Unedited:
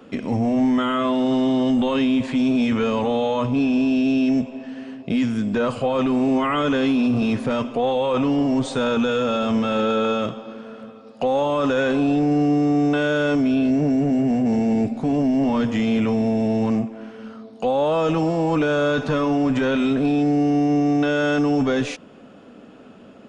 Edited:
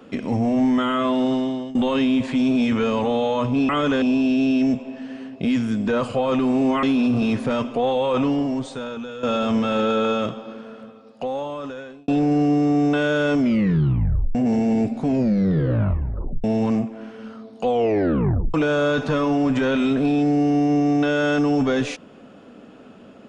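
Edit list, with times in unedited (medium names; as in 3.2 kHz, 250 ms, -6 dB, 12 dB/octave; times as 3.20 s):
1.24–1.75 s: fade out, to -19.5 dB
6.50–6.83 s: move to 3.69 s
8.25–9.23 s: fade out quadratic, to -13 dB
10.50–12.08 s: fade out
13.41 s: tape stop 0.94 s
15.05 s: tape stop 1.39 s
17.66 s: tape stop 0.88 s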